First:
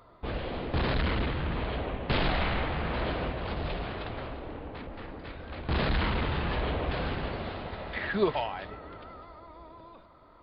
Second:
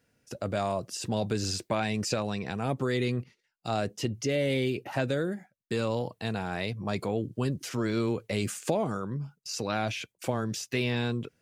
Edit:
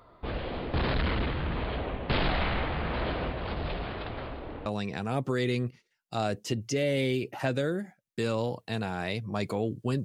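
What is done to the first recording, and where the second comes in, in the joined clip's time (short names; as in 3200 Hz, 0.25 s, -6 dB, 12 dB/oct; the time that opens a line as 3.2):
first
4.66 switch to second from 2.19 s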